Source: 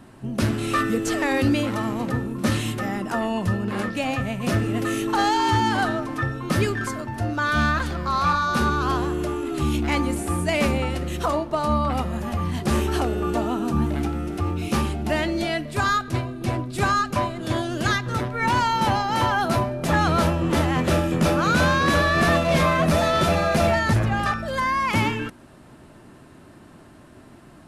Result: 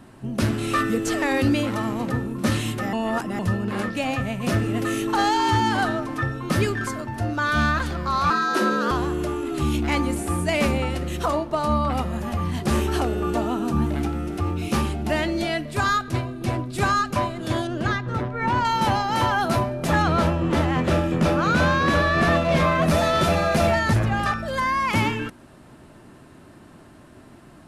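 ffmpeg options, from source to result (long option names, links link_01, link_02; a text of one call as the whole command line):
ffmpeg -i in.wav -filter_complex "[0:a]asettb=1/sr,asplit=3[link_01][link_02][link_03];[link_01]atrim=end=8.304[link_04];[link_02]atrim=start=8.3:end=8.91,asetpts=PTS-STARTPTS,afade=type=in:duration=0.004:curve=qsin,afade=type=out:start_time=0.606:duration=0.004:curve=qsin,afreqshift=140[link_05];[link_03]atrim=start=8.906[link_06];[link_04][link_05]acrossfade=duration=0.004:curve1=hsin:curve2=qsin[link_07];[link_07][link_06]acrossfade=duration=0.004:curve1=qsin:curve2=hsin,asettb=1/sr,asplit=3[link_08][link_09][link_10];[link_08]atrim=end=17.674[link_11];[link_09]atrim=start=17.67:end=18.65,asetpts=PTS-STARTPTS,afade=type=in:duration=0.004:curve=qsin,afade=type=out:start_time=0.976:duration=0.004:curve=qsin,lowpass=frequency=1700:poles=1[link_12];[link_10]atrim=start=18.646[link_13];[link_11][link_12]acrossfade=duration=0.004:curve1=hsin:curve2=qsin[link_14];[link_14][link_13]acrossfade=duration=0.004:curve1=qsin:curve2=hsin,asettb=1/sr,asplit=3[link_15][link_16][link_17];[link_15]atrim=end=20.024[link_18];[link_16]atrim=start=20.02:end=22.82,asetpts=PTS-STARTPTS,afade=type=in:duration=0.004:curve=qsin,afade=type=out:start_time=2.796:duration=0.004:curve=qsin,lowpass=frequency=3900:poles=1[link_19];[link_17]atrim=start=22.816[link_20];[link_18][link_19]acrossfade=duration=0.004:curve1=hsin:curve2=qsin[link_21];[link_21][link_20]acrossfade=duration=0.004:curve1=qsin:curve2=hsin,asplit=3[link_22][link_23][link_24];[link_22]atrim=end=2.932[link_25];[link_23]atrim=start=2.928:end=3.392,asetpts=PTS-STARTPTS,areverse[link_26];[link_24]atrim=start=3.388[link_27];[link_25][link_26]acrossfade=duration=0.004:curve1=hsin:curve2=hsin[link_28];[link_28][link_27]acrossfade=duration=0.004:curve1=hsin:curve2=hsin" out.wav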